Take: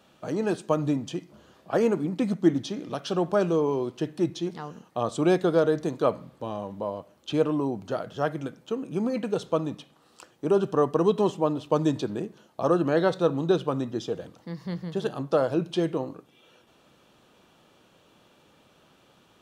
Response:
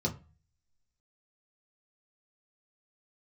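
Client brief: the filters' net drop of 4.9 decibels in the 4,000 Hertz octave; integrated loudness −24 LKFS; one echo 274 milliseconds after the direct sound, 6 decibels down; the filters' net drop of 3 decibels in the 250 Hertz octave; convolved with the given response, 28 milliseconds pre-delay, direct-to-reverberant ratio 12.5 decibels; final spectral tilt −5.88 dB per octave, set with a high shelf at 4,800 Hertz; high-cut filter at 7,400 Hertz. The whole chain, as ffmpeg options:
-filter_complex "[0:a]lowpass=7400,equalizer=frequency=250:width_type=o:gain=-4.5,equalizer=frequency=4000:width_type=o:gain=-4,highshelf=frequency=4800:gain=-4.5,aecho=1:1:274:0.501,asplit=2[link_01][link_02];[1:a]atrim=start_sample=2205,adelay=28[link_03];[link_02][link_03]afir=irnorm=-1:irlink=0,volume=-17.5dB[link_04];[link_01][link_04]amix=inputs=2:normalize=0,volume=3dB"

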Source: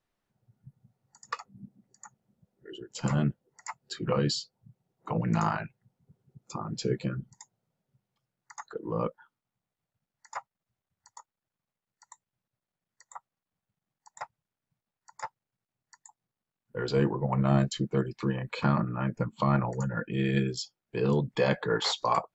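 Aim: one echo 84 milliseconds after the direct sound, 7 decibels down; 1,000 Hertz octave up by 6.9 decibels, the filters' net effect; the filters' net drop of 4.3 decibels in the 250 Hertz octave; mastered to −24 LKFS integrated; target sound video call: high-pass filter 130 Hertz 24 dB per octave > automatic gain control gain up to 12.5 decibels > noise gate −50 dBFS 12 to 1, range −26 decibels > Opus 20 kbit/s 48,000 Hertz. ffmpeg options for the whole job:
ffmpeg -i in.wav -af "highpass=frequency=130:width=0.5412,highpass=frequency=130:width=1.3066,equalizer=frequency=250:width_type=o:gain=-6.5,equalizer=frequency=1000:width_type=o:gain=8.5,aecho=1:1:84:0.447,dynaudnorm=maxgain=12.5dB,agate=range=-26dB:threshold=-50dB:ratio=12,volume=4.5dB" -ar 48000 -c:a libopus -b:a 20k out.opus

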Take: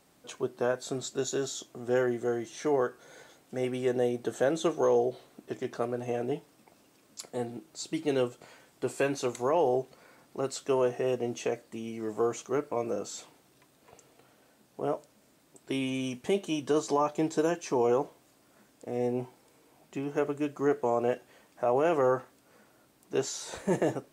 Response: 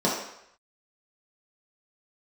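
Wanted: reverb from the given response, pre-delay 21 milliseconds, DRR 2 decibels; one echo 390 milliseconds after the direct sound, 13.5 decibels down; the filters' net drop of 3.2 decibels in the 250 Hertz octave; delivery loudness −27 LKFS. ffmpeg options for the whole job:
-filter_complex "[0:a]equalizer=frequency=250:width_type=o:gain=-4.5,aecho=1:1:390:0.211,asplit=2[link_01][link_02];[1:a]atrim=start_sample=2205,adelay=21[link_03];[link_02][link_03]afir=irnorm=-1:irlink=0,volume=-16.5dB[link_04];[link_01][link_04]amix=inputs=2:normalize=0,volume=1.5dB"

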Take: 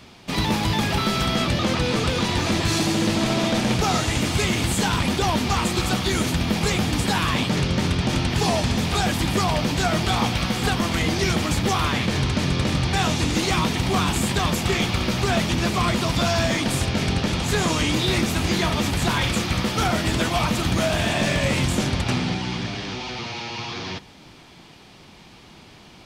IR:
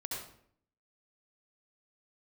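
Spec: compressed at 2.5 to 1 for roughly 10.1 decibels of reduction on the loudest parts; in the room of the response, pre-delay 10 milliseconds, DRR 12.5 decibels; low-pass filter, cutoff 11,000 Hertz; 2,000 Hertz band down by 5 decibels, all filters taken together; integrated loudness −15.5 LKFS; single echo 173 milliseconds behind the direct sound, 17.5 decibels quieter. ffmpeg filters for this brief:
-filter_complex "[0:a]lowpass=11000,equalizer=frequency=2000:width_type=o:gain=-6.5,acompressor=threshold=-34dB:ratio=2.5,aecho=1:1:173:0.133,asplit=2[link_01][link_02];[1:a]atrim=start_sample=2205,adelay=10[link_03];[link_02][link_03]afir=irnorm=-1:irlink=0,volume=-13.5dB[link_04];[link_01][link_04]amix=inputs=2:normalize=0,volume=16.5dB"

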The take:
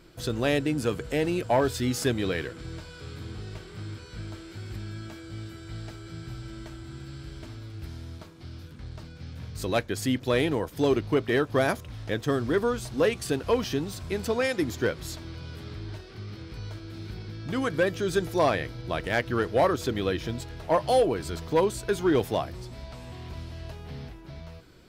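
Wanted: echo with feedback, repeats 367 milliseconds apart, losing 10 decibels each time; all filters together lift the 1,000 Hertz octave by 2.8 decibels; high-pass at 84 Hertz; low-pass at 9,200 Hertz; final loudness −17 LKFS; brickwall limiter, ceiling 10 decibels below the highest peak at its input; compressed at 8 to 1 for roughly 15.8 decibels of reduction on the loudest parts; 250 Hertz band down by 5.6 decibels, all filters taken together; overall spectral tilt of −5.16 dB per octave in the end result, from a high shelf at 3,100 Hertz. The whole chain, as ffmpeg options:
ffmpeg -i in.wav -af "highpass=84,lowpass=9200,equalizer=frequency=250:width_type=o:gain=-8,equalizer=frequency=1000:width_type=o:gain=4.5,highshelf=frequency=3100:gain=-3,acompressor=threshold=-34dB:ratio=8,alimiter=level_in=7dB:limit=-24dB:level=0:latency=1,volume=-7dB,aecho=1:1:367|734|1101|1468:0.316|0.101|0.0324|0.0104,volume=25dB" out.wav

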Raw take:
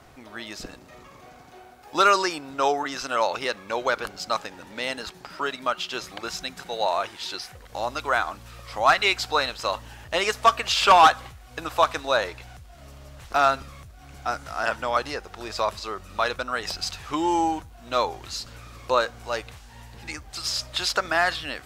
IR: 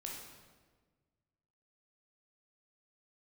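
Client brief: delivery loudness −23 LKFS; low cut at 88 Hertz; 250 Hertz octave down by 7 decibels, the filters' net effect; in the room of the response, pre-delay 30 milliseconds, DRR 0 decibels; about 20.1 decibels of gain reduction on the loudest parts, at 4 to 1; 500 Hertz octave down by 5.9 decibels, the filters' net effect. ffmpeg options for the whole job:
-filter_complex "[0:a]highpass=88,equalizer=frequency=250:width_type=o:gain=-7,equalizer=frequency=500:width_type=o:gain=-6.5,acompressor=threshold=-38dB:ratio=4,asplit=2[link_01][link_02];[1:a]atrim=start_sample=2205,adelay=30[link_03];[link_02][link_03]afir=irnorm=-1:irlink=0,volume=1.5dB[link_04];[link_01][link_04]amix=inputs=2:normalize=0,volume=14.5dB"

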